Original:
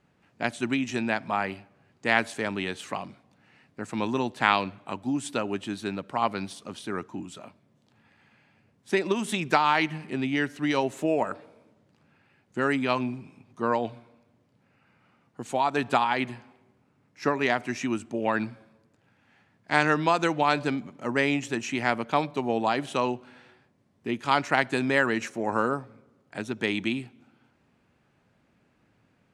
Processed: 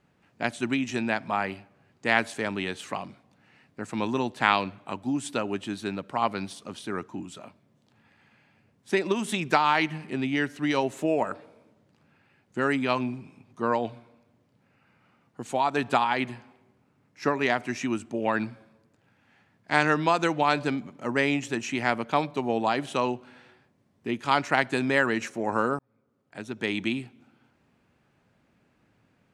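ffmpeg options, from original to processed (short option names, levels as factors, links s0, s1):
-filter_complex "[0:a]asplit=2[s0][s1];[s0]atrim=end=25.79,asetpts=PTS-STARTPTS,afade=t=out:st=25.786:d=0.004:c=hsin[s2];[s1]atrim=start=25.79,asetpts=PTS-STARTPTS,afade=t=in:d=1.05[s3];[s2][s3]concat=n=2:v=0:a=1"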